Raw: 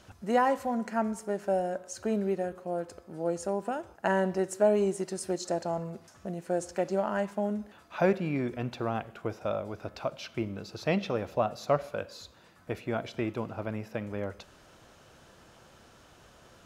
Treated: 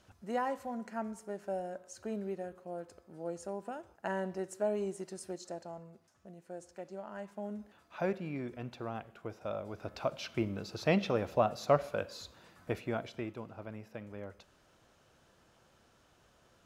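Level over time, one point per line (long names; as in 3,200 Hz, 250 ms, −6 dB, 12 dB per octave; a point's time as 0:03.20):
0:05.19 −9 dB
0:05.94 −15.5 dB
0:07.04 −15.5 dB
0:07.60 −8.5 dB
0:09.34 −8.5 dB
0:10.11 −0.5 dB
0:12.71 −0.5 dB
0:13.39 −10 dB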